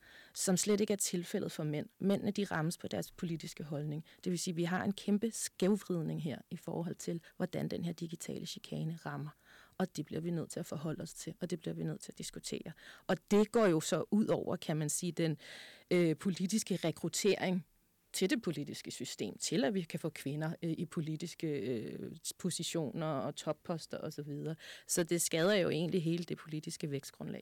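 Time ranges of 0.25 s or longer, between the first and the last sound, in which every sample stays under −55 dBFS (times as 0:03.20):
0:17.63–0:18.14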